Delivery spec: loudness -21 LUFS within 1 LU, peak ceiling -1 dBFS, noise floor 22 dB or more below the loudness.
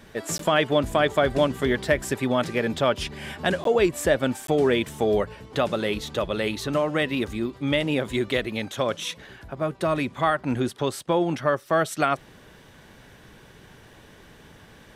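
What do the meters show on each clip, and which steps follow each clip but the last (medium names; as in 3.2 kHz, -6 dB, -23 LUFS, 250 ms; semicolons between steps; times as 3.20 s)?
dropouts 3; longest dropout 13 ms; loudness -24.5 LUFS; peak level -7.0 dBFS; loudness target -21.0 LUFS
-> interpolate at 0.38/3.64/4.47 s, 13 ms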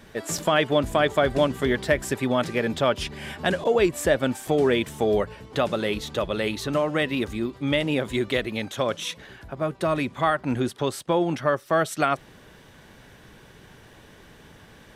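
dropouts 0; loudness -24.5 LUFS; peak level -7.0 dBFS; loudness target -21.0 LUFS
-> trim +3.5 dB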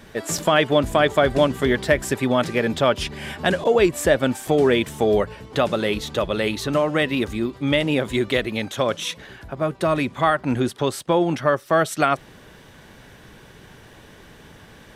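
loudness -21.0 LUFS; peak level -3.5 dBFS; noise floor -47 dBFS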